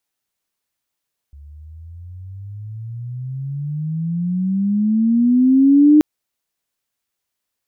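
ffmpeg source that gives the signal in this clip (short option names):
-f lavfi -i "aevalsrc='pow(10,(-6+31*(t/4.68-1))/20)*sin(2*PI*70.1*4.68/(25.5*log(2)/12)*(exp(25.5*log(2)/12*t/4.68)-1))':d=4.68:s=44100"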